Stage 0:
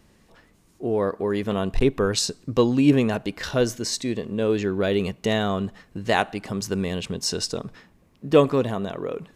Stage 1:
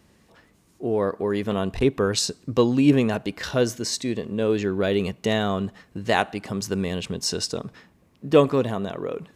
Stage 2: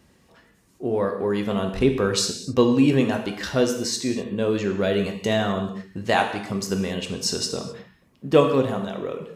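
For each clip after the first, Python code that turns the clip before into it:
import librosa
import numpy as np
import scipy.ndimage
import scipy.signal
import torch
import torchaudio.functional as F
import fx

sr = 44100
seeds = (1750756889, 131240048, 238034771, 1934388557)

y1 = scipy.signal.sosfilt(scipy.signal.butter(2, 52.0, 'highpass', fs=sr, output='sos'), x)
y2 = fx.dereverb_blind(y1, sr, rt60_s=0.51)
y2 = fx.rev_gated(y2, sr, seeds[0], gate_ms=290, shape='falling', drr_db=3.5)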